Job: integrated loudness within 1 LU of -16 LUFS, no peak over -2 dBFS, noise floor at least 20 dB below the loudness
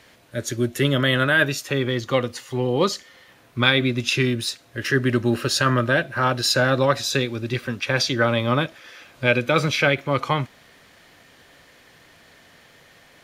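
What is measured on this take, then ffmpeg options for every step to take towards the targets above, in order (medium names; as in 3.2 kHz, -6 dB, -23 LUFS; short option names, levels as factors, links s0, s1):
loudness -21.5 LUFS; peak level -3.5 dBFS; loudness target -16.0 LUFS
-> -af "volume=1.88,alimiter=limit=0.794:level=0:latency=1"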